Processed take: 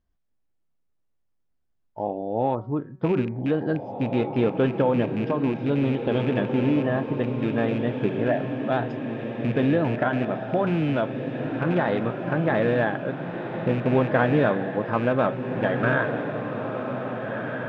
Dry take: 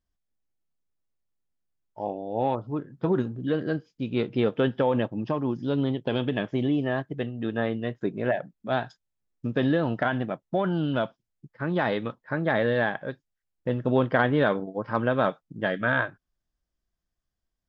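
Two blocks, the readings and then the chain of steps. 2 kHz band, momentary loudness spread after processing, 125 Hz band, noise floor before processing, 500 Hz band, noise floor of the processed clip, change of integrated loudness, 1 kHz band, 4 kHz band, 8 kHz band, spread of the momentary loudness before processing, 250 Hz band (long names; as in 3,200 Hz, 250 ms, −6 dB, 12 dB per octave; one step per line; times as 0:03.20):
+0.5 dB, 8 LU, +4.0 dB, −84 dBFS, +3.0 dB, −71 dBFS, +2.5 dB, +2.5 dB, −2.0 dB, can't be measured, 8 LU, +3.5 dB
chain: loose part that buzzes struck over −29 dBFS, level −26 dBFS
low-pass filter 1,600 Hz 6 dB per octave
hum removal 187.6 Hz, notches 13
in parallel at +1 dB: downward compressor, threshold −33 dBFS, peak gain reduction 14.5 dB
on the sum: feedback delay with all-pass diffusion 1,789 ms, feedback 46%, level −6 dB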